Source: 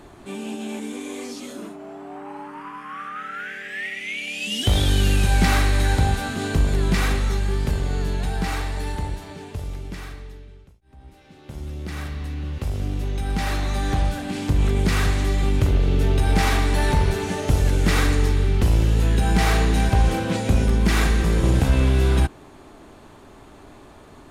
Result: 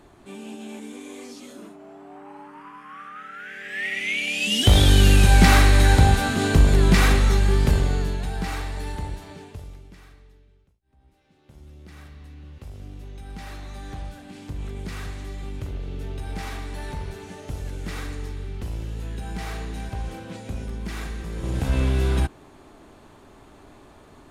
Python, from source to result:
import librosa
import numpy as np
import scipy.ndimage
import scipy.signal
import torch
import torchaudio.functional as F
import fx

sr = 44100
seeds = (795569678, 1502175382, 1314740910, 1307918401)

y = fx.gain(x, sr, db=fx.line((3.4, -6.5), (3.97, 4.0), (7.78, 4.0), (8.21, -3.5), (9.36, -3.5), (9.92, -13.5), (21.31, -13.5), (21.76, -3.5)))